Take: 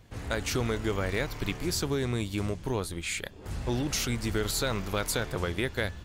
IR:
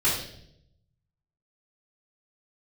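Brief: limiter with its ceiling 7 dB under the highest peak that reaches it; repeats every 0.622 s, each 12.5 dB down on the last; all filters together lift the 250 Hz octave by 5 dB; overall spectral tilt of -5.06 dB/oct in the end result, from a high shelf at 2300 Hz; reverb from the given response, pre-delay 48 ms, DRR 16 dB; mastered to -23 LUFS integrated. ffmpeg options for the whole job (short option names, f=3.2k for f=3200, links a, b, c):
-filter_complex "[0:a]equalizer=f=250:t=o:g=6.5,highshelf=f=2.3k:g=-3.5,alimiter=limit=-20dB:level=0:latency=1,aecho=1:1:622|1244|1866:0.237|0.0569|0.0137,asplit=2[a][b];[1:a]atrim=start_sample=2205,adelay=48[c];[b][c]afir=irnorm=-1:irlink=0,volume=-28.5dB[d];[a][d]amix=inputs=2:normalize=0,volume=8.5dB"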